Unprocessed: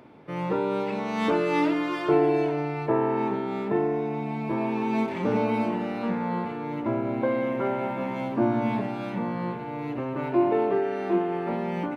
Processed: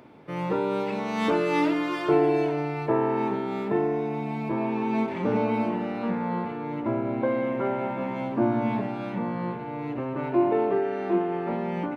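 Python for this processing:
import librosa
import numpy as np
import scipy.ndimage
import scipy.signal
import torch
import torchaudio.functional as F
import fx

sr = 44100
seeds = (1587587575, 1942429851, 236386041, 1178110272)

y = fx.high_shelf(x, sr, hz=4700.0, db=fx.steps((0.0, 3.0), (4.48, -7.5)))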